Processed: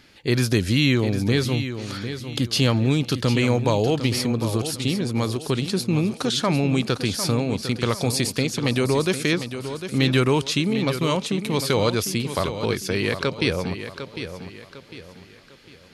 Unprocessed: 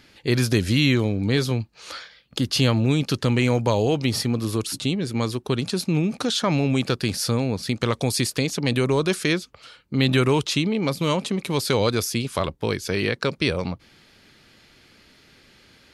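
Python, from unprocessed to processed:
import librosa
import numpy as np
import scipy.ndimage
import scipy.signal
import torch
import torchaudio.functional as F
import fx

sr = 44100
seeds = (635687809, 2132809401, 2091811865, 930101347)

y = fx.echo_feedback(x, sr, ms=752, feedback_pct=37, wet_db=-10)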